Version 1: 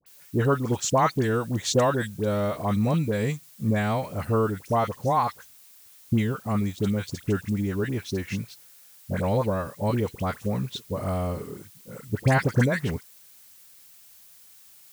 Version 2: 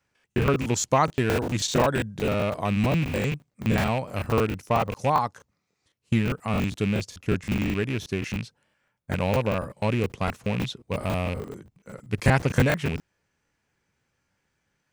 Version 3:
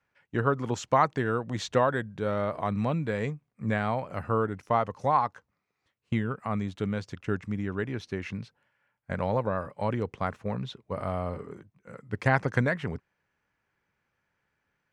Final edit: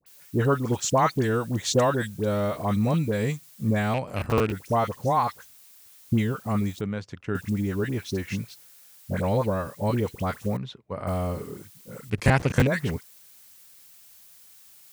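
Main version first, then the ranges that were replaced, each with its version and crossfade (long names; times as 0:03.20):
1
0:03.94–0:04.52: punch in from 2
0:06.81–0:07.35: punch in from 3
0:10.57–0:11.07: punch in from 3
0:12.10–0:12.67: punch in from 2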